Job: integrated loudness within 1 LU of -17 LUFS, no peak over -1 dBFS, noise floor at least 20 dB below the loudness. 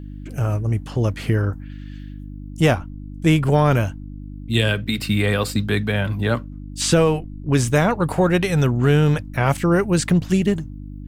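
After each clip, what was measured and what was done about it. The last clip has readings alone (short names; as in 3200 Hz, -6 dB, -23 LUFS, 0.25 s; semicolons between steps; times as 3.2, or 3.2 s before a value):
hum 50 Hz; harmonics up to 300 Hz; hum level -31 dBFS; loudness -20.0 LUFS; peak -5.0 dBFS; loudness target -17.0 LUFS
-> de-hum 50 Hz, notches 6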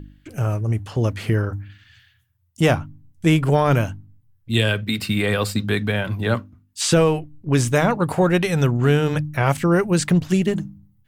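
hum none; loudness -20.5 LUFS; peak -5.5 dBFS; loudness target -17.0 LUFS
-> gain +3.5 dB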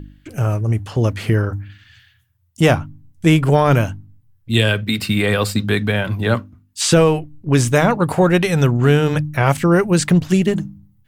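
loudness -17.0 LUFS; peak -2.0 dBFS; noise floor -58 dBFS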